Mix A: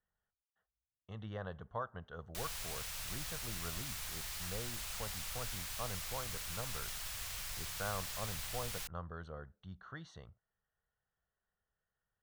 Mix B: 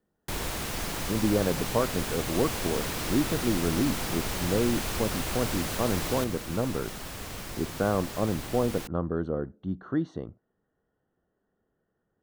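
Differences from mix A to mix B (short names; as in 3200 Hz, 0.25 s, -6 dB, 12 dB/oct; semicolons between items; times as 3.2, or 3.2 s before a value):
first sound: unmuted; master: remove passive tone stack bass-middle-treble 10-0-10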